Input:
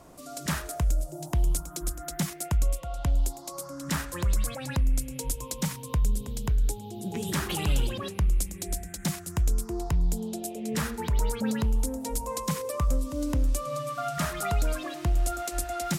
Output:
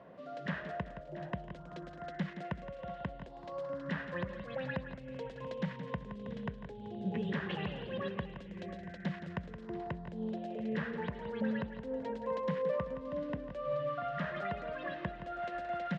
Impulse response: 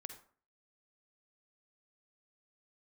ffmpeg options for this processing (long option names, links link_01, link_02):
-filter_complex "[0:a]equalizer=frequency=1800:width_type=o:width=1:gain=7,acompressor=threshold=-28dB:ratio=6,highpass=160,equalizer=frequency=190:width_type=q:width=4:gain=5,equalizer=frequency=310:width_type=q:width=4:gain=-10,equalizer=frequency=530:width_type=q:width=4:gain=6,equalizer=frequency=840:width_type=q:width=4:gain=-5,equalizer=frequency=1300:width_type=q:width=4:gain=-9,equalizer=frequency=2300:width_type=q:width=4:gain=-9,lowpass=frequency=2800:width=0.5412,lowpass=frequency=2800:width=1.3066,asplit=2[link_01][link_02];[link_02]aecho=0:1:170|383|684:0.299|0.106|0.178[link_03];[link_01][link_03]amix=inputs=2:normalize=0,volume=-2dB"